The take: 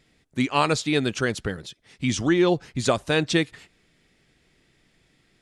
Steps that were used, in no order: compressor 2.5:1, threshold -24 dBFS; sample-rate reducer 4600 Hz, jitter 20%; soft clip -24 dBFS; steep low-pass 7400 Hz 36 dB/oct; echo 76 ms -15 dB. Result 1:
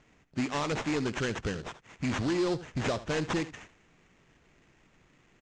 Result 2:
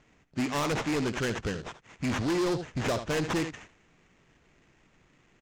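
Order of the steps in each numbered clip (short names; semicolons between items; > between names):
compressor > soft clip > echo > sample-rate reducer > steep low-pass; echo > sample-rate reducer > steep low-pass > soft clip > compressor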